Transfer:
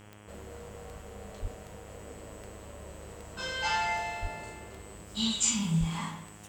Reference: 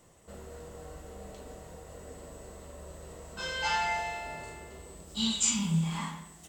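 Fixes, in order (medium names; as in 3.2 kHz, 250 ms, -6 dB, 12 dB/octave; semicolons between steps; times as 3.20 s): de-click; de-hum 104.2 Hz, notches 32; de-plosive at 1.41/4.21/5.79 s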